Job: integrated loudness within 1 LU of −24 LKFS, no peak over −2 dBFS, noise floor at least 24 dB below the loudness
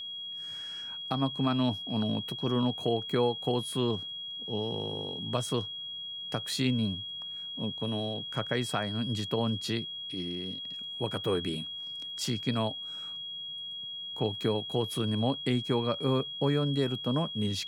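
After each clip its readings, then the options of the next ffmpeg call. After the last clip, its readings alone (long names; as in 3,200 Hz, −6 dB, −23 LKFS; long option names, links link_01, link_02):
interfering tone 3,300 Hz; level of the tone −37 dBFS; integrated loudness −31.5 LKFS; sample peak −14.5 dBFS; target loudness −24.0 LKFS
→ -af "bandreject=frequency=3300:width=30"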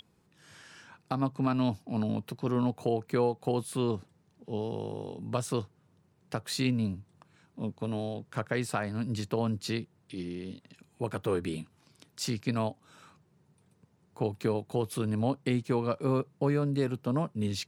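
interfering tone none found; integrated loudness −32.0 LKFS; sample peak −15.0 dBFS; target loudness −24.0 LKFS
→ -af "volume=8dB"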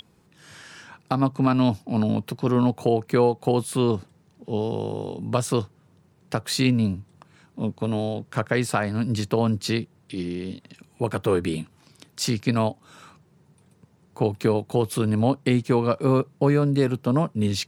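integrated loudness −24.0 LKFS; sample peak −7.0 dBFS; background noise floor −60 dBFS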